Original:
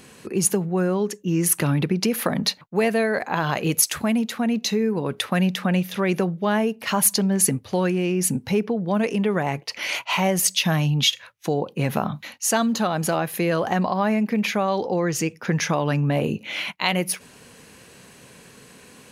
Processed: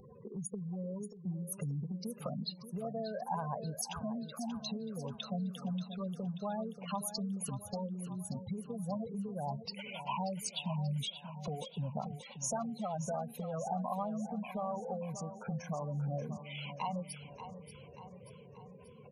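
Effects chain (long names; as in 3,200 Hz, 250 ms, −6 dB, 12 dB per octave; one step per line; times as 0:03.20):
low-pass filter 2,700 Hz 6 dB per octave
gate on every frequency bin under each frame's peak −10 dB strong
downward compressor 5 to 1, threshold −34 dBFS, peak gain reduction 15 dB
phaser swept by the level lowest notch 280 Hz, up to 1,700 Hz, full sweep at −12.5 dBFS
repeating echo 584 ms, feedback 53%, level −11 dB
level +1 dB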